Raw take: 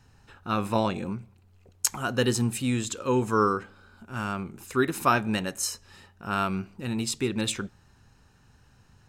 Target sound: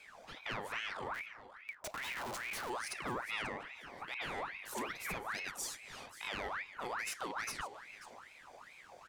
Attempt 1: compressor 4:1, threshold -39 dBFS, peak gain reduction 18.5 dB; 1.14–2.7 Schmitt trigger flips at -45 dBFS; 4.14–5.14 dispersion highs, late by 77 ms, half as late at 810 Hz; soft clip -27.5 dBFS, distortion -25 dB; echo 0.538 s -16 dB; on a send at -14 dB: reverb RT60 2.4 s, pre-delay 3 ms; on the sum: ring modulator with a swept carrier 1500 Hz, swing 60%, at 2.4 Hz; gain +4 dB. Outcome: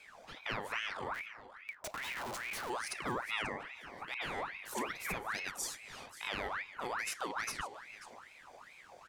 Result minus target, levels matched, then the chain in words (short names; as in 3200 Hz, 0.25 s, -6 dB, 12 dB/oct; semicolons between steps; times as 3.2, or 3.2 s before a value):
soft clip: distortion -11 dB
compressor 4:1, threshold -39 dBFS, peak gain reduction 18.5 dB; 1.14–2.7 Schmitt trigger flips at -45 dBFS; 4.14–5.14 dispersion highs, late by 77 ms, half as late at 810 Hz; soft clip -35.5 dBFS, distortion -14 dB; echo 0.538 s -16 dB; on a send at -14 dB: reverb RT60 2.4 s, pre-delay 3 ms; on the sum: ring modulator with a swept carrier 1500 Hz, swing 60%, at 2.4 Hz; gain +4 dB